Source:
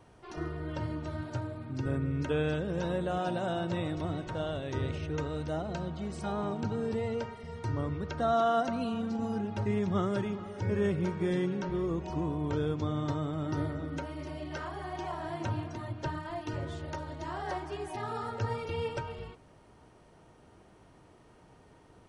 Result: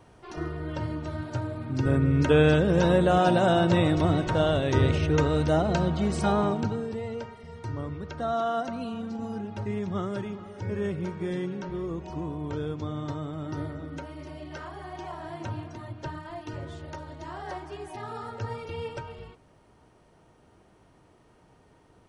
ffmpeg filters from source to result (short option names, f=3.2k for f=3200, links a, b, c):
-af "volume=11dB,afade=t=in:st=1.28:d=1.17:silence=0.421697,afade=t=out:st=6.24:d=0.63:silence=0.251189"